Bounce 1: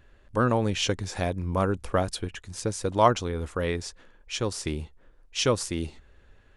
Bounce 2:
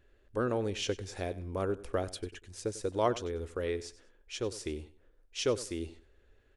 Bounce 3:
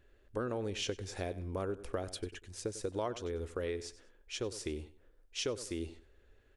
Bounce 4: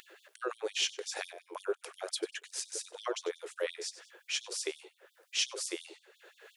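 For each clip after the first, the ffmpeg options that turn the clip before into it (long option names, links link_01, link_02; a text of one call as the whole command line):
ffmpeg -i in.wav -af "equalizer=frequency=160:width_type=o:width=0.67:gain=-8,equalizer=frequency=400:width_type=o:width=0.67:gain=7,equalizer=frequency=1000:width_type=o:width=0.67:gain=-5,aecho=1:1:96|192:0.141|0.0353,volume=-8.5dB" out.wav
ffmpeg -i in.wav -af "acompressor=threshold=-33dB:ratio=4" out.wav
ffmpeg -i in.wav -af "acompressor=mode=upward:threshold=-41dB:ratio=2.5,afftfilt=real='re*gte(b*sr/1024,320*pow(3300/320,0.5+0.5*sin(2*PI*5.7*pts/sr)))':imag='im*gte(b*sr/1024,320*pow(3300/320,0.5+0.5*sin(2*PI*5.7*pts/sr)))':win_size=1024:overlap=0.75,volume=7.5dB" out.wav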